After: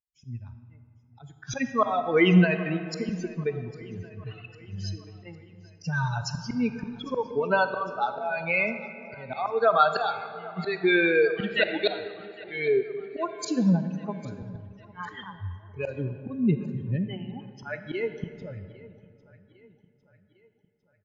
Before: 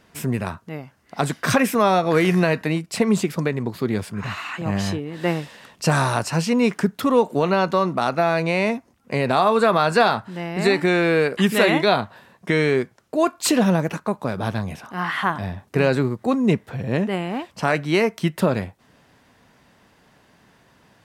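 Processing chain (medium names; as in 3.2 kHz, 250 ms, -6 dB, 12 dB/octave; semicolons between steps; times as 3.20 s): expander on every frequency bin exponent 3; high-pass 130 Hz 6 dB/octave; slow attack 373 ms; in parallel at -2.5 dB: compression, threshold -38 dBFS, peak gain reduction 15.5 dB; on the sum: feedback delay 803 ms, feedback 55%, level -22 dB; on a send at -9 dB: reverberation RT60 2.3 s, pre-delay 5 ms; on the sum: trim +7 dB; MP3 40 kbps 16 kHz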